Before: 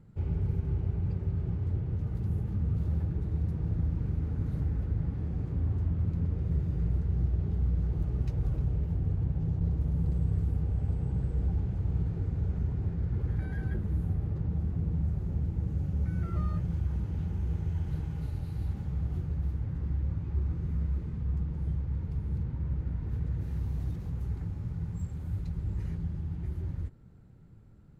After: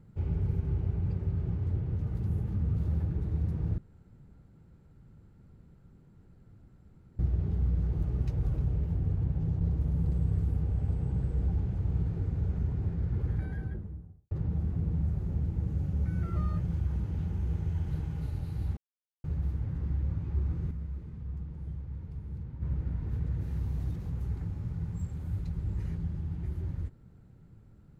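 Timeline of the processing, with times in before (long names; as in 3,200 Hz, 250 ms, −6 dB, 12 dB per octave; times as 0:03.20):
0:03.78–0:07.19: fill with room tone
0:13.24–0:14.31: fade out and dull
0:18.77–0:19.24: silence
0:20.71–0:22.62: clip gain −7 dB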